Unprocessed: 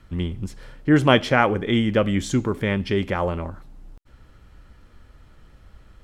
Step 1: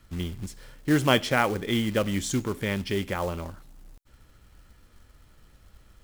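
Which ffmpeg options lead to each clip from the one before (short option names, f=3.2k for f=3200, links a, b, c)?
-af "highshelf=f=4.8k:g=11.5,acrusher=bits=4:mode=log:mix=0:aa=0.000001,volume=-6dB"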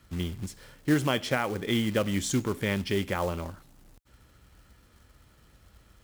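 -af "highpass=48,alimiter=limit=-14dB:level=0:latency=1:release=267"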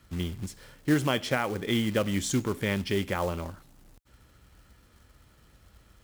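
-af anull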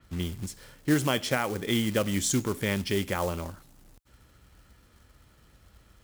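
-af "adynamicequalizer=threshold=0.00447:dfrequency=4700:dqfactor=0.7:tfrequency=4700:tqfactor=0.7:attack=5:release=100:ratio=0.375:range=3:mode=boostabove:tftype=highshelf"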